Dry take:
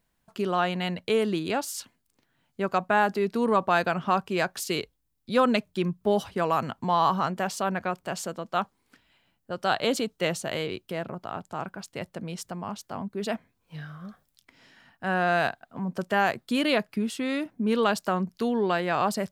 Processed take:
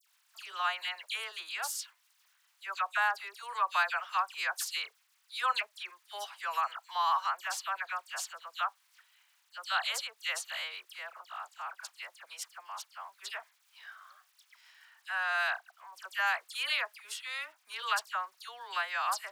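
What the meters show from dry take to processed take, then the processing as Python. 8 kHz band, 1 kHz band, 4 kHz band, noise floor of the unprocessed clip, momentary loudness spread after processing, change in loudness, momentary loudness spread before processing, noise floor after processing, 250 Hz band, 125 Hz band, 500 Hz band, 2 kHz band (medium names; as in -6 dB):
-2.0 dB, -6.5 dB, -2.0 dB, -74 dBFS, 15 LU, -7.0 dB, 13 LU, -71 dBFS, under -40 dB, under -40 dB, -22.0 dB, -2.0 dB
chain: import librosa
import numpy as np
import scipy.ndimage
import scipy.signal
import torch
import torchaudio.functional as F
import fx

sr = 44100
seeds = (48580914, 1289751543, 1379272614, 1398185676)

y = fx.dmg_crackle(x, sr, seeds[0], per_s=490.0, level_db=-52.0)
y = scipy.signal.sosfilt(scipy.signal.cheby2(4, 80, 170.0, 'highpass', fs=sr, output='sos'), y)
y = fx.dispersion(y, sr, late='lows', ms=76.0, hz=2300.0)
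y = F.gain(torch.from_numpy(y), -2.0).numpy()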